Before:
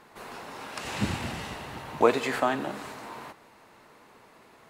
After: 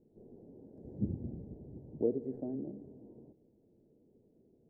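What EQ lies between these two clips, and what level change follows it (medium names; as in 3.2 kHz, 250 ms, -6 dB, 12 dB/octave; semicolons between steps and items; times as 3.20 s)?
inverse Chebyshev low-pass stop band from 1.1 kHz, stop band 50 dB; -5.0 dB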